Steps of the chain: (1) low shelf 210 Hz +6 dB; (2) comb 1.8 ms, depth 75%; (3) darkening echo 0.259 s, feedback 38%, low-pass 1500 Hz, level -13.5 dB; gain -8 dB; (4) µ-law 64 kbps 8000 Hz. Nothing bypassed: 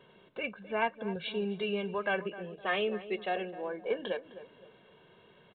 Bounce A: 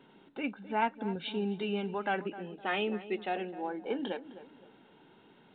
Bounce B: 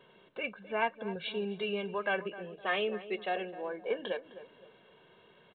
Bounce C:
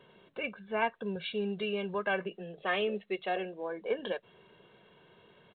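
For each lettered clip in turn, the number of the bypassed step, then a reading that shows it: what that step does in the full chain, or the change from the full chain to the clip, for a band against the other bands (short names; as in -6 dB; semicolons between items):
2, 250 Hz band +4.5 dB; 1, 125 Hz band -3.0 dB; 3, momentary loudness spread change -1 LU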